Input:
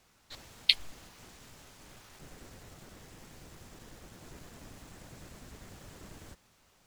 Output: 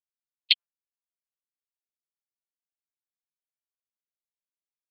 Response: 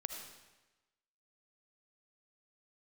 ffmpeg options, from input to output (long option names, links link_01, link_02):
-filter_complex "[0:a]atempo=1.4,lowpass=5600,equalizer=frequency=3000:width=0.8:gain=14.5,afftfilt=real='re*gte(hypot(re,im),0.141)':imag='im*gte(hypot(re,im),0.141)':win_size=1024:overlap=0.75,areverse,acompressor=threshold=-23dB:ratio=16,areverse,tiltshelf=frequency=970:gain=-5.5,acrossover=split=960[link_01][link_02];[link_01]acrusher=bits=3:dc=4:mix=0:aa=0.000001[link_03];[link_03][link_02]amix=inputs=2:normalize=0"